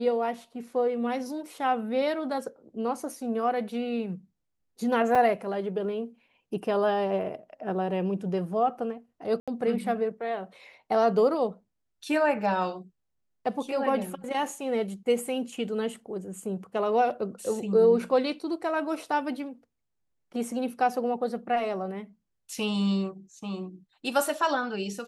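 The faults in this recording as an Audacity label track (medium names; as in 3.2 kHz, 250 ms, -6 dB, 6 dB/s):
5.150000	5.150000	dropout 4.1 ms
9.400000	9.480000	dropout 76 ms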